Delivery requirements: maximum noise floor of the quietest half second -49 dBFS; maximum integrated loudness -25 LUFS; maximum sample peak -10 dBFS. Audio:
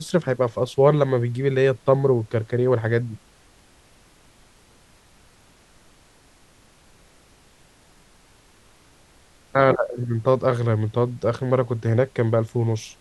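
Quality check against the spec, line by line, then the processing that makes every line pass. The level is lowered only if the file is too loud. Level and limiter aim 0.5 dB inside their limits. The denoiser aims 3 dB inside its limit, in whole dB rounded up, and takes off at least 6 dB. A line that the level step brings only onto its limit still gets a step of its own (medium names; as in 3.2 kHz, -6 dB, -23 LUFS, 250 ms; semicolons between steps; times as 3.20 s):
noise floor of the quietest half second -54 dBFS: pass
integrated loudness -21.5 LUFS: fail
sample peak -2.5 dBFS: fail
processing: trim -4 dB; peak limiter -10.5 dBFS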